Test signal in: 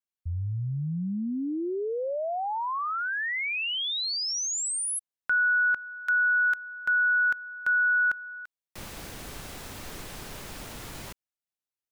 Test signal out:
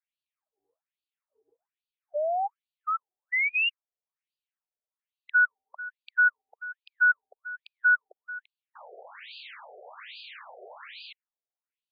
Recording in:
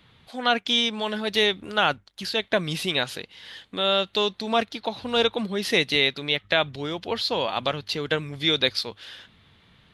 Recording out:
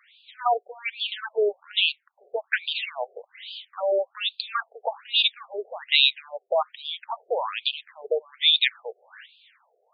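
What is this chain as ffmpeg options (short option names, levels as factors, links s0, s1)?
-af "crystalizer=i=3.5:c=0,bass=f=250:g=6,treble=f=4000:g=-10,afftfilt=real='re*between(b*sr/1024,530*pow(3500/530,0.5+0.5*sin(2*PI*1.2*pts/sr))/1.41,530*pow(3500/530,0.5+0.5*sin(2*PI*1.2*pts/sr))*1.41)':imag='im*between(b*sr/1024,530*pow(3500/530,0.5+0.5*sin(2*PI*1.2*pts/sr))/1.41,530*pow(3500/530,0.5+0.5*sin(2*PI*1.2*pts/sr))*1.41)':win_size=1024:overlap=0.75,volume=1.33"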